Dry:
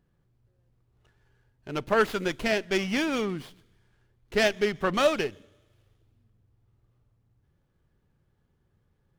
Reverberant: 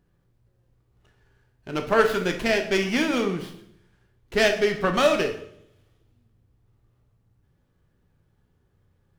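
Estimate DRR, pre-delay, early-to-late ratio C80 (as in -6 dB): 5.0 dB, 12 ms, 13.0 dB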